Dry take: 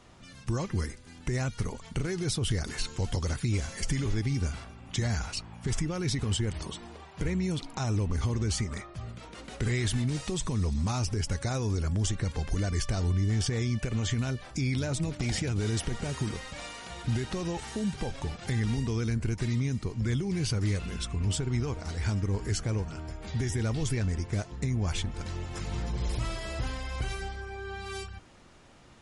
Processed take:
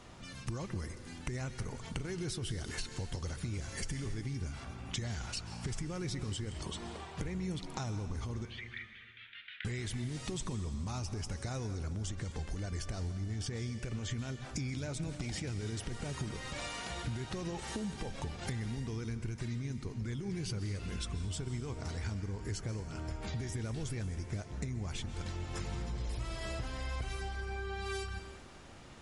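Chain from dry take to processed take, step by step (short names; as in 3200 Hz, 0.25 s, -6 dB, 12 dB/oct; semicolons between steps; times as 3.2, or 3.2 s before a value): 8.45–9.65 elliptic band-pass 1600–3500 Hz, stop band 50 dB; compressor 6:1, threshold -38 dBFS, peak gain reduction 13.5 dB; on a send: reverb RT60 1.7 s, pre-delay 0.117 s, DRR 10 dB; on the sum: gain +2 dB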